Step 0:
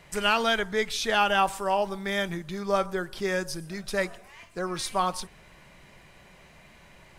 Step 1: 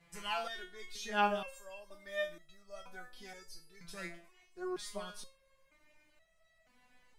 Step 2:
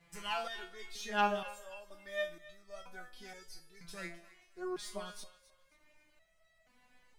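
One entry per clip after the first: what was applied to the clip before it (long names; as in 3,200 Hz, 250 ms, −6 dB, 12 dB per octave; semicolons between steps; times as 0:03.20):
hum removal 112.5 Hz, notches 12; step-sequenced resonator 2.1 Hz 170–650 Hz; level −1 dB
stylus tracing distortion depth 0.021 ms; feedback echo with a high-pass in the loop 265 ms, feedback 30%, high-pass 780 Hz, level −17 dB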